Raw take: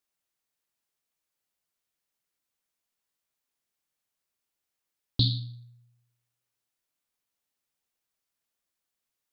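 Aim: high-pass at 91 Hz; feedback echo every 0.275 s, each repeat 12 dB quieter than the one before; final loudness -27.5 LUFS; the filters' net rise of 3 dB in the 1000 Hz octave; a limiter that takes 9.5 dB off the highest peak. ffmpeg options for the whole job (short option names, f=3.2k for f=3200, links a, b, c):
-af "highpass=91,equalizer=f=1k:t=o:g=4,alimiter=limit=-21dB:level=0:latency=1,aecho=1:1:275|550|825:0.251|0.0628|0.0157,volume=8dB"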